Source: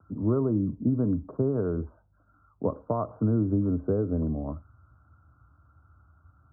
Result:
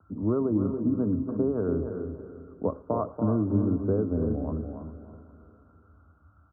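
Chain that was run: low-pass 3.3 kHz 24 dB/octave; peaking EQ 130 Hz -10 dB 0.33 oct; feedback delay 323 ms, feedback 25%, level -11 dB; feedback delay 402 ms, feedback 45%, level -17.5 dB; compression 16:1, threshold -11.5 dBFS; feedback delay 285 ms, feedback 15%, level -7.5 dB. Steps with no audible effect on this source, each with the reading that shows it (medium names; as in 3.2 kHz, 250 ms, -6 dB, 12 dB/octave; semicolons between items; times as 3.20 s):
low-pass 3.3 kHz: input has nothing above 1.2 kHz; compression, threshold -11.5 dBFS: peak at its input -14.5 dBFS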